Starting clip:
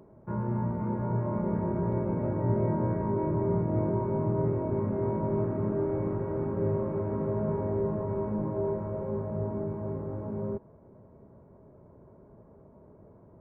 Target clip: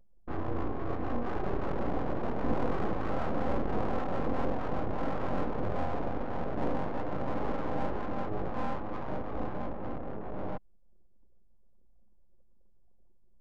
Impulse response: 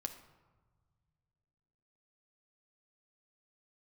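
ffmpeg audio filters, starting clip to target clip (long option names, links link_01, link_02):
-af "lowpass=1600,aeval=exprs='abs(val(0))':channel_layout=same,anlmdn=0.1"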